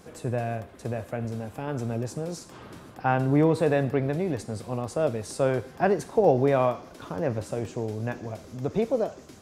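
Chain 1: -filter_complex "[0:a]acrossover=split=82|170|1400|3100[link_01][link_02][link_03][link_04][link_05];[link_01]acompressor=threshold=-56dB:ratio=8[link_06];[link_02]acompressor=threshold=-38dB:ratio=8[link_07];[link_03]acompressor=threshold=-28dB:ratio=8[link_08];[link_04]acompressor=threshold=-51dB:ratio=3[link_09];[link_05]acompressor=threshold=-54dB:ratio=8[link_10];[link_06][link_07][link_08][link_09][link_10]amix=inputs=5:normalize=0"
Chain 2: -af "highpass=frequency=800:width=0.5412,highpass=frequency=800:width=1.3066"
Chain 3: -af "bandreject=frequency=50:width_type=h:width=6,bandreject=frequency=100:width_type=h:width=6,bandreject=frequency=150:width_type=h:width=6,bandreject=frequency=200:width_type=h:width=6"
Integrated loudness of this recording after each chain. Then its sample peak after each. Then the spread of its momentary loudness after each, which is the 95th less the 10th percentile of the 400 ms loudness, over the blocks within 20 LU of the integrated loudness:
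−33.5, −37.0, −27.5 LKFS; −16.5, −15.0, −7.5 dBFS; 7, 14, 13 LU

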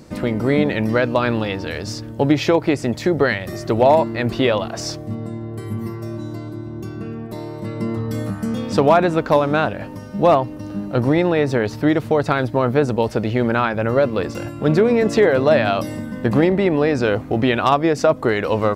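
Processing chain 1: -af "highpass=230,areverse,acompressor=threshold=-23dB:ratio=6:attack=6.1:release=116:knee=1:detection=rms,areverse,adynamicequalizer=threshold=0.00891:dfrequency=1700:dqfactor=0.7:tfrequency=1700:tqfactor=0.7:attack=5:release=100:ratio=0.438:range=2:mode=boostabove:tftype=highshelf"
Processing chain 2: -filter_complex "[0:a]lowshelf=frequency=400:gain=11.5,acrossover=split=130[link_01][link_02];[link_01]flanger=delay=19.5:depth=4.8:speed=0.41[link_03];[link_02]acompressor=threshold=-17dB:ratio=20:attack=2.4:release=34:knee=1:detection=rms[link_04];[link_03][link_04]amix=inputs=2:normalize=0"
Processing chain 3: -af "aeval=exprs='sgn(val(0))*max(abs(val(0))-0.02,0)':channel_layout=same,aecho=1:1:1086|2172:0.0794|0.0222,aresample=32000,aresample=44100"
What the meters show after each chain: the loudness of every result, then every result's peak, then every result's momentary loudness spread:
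−28.0, −21.0, −19.5 LKFS; −12.0, −6.5, −3.5 dBFS; 7, 4, 17 LU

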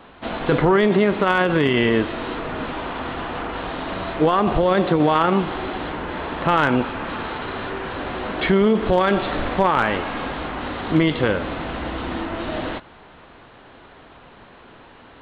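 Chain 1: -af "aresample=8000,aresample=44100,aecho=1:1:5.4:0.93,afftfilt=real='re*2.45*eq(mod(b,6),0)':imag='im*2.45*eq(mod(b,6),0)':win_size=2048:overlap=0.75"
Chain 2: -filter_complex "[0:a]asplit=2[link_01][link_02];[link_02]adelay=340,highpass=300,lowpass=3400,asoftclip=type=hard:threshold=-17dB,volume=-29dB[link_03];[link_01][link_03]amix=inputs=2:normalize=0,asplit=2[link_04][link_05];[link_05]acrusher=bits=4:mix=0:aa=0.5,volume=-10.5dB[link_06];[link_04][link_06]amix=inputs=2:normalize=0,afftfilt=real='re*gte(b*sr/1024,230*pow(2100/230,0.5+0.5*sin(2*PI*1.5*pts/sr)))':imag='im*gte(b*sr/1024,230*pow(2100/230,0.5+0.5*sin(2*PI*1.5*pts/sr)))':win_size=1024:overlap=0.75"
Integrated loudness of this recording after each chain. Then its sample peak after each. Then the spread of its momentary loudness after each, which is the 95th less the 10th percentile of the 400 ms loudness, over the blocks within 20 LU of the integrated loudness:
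−20.0, −23.0 LKFS; −1.5, −4.5 dBFS; 15, 12 LU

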